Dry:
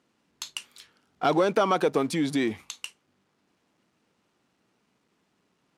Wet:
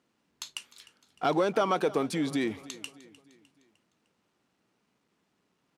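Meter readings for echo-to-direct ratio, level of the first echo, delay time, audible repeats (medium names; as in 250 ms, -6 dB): -18.0 dB, -19.0 dB, 304 ms, 3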